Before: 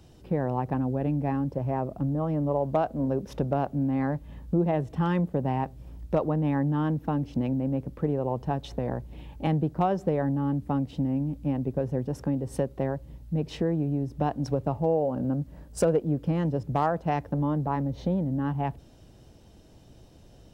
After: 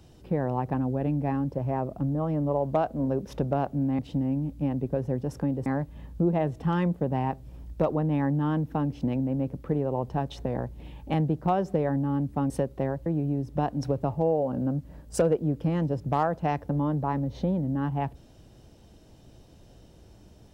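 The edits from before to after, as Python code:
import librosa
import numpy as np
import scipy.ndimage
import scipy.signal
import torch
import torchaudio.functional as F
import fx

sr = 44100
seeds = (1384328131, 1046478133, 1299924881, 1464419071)

y = fx.edit(x, sr, fx.move(start_s=10.83, length_s=1.67, to_s=3.99),
    fx.cut(start_s=13.06, length_s=0.63), tone=tone)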